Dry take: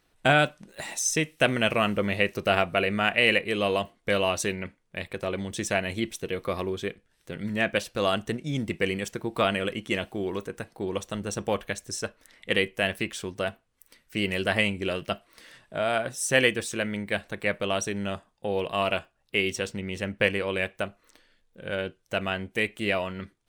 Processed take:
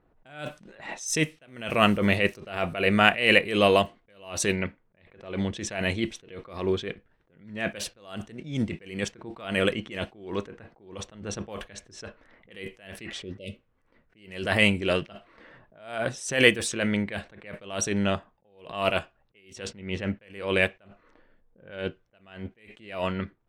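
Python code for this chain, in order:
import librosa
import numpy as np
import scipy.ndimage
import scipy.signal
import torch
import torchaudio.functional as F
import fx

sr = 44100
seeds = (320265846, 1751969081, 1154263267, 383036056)

y = fx.env_lowpass(x, sr, base_hz=970.0, full_db=-22.5)
y = fx.spec_repair(y, sr, seeds[0], start_s=13.06, length_s=0.59, low_hz=630.0, high_hz=2000.0, source='both')
y = fx.attack_slew(y, sr, db_per_s=110.0)
y = y * librosa.db_to_amplitude(6.0)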